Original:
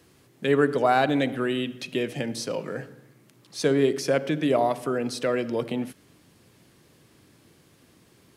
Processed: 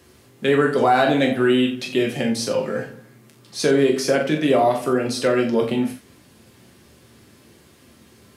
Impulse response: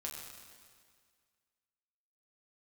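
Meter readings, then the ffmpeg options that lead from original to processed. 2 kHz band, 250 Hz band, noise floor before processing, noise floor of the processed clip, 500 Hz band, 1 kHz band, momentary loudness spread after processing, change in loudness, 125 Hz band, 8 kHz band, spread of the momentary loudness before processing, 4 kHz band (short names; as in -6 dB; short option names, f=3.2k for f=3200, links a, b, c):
+6.0 dB, +6.0 dB, -59 dBFS, -52 dBFS, +5.5 dB, +5.0 dB, 8 LU, +5.5 dB, +4.0 dB, +6.5 dB, 11 LU, +6.5 dB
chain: -filter_complex "[1:a]atrim=start_sample=2205,atrim=end_sample=3969[a];[0:a][a]afir=irnorm=-1:irlink=0,alimiter=level_in=15.5dB:limit=-1dB:release=50:level=0:latency=1,volume=-6.5dB"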